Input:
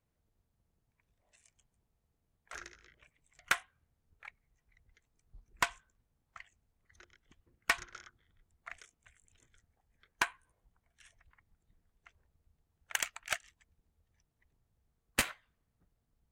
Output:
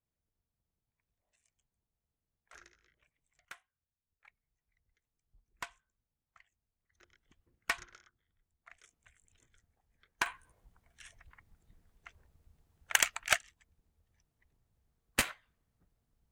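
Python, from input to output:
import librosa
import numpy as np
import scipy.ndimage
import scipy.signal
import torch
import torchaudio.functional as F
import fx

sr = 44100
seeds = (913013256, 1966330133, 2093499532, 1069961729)

y = fx.gain(x, sr, db=fx.steps((0.0, -10.0), (3.45, -20.0), (4.24, -12.0), (7.01, -3.5), (7.95, -10.0), (8.83, -1.5), (10.26, 7.0), (13.42, 0.5)))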